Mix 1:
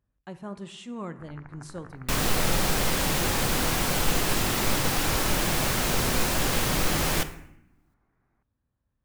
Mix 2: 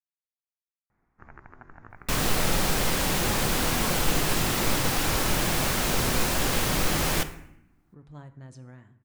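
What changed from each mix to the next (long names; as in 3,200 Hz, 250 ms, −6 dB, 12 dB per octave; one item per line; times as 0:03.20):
speech: entry +2.85 s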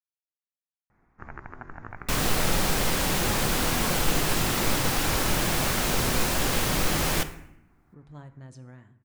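first sound +7.0 dB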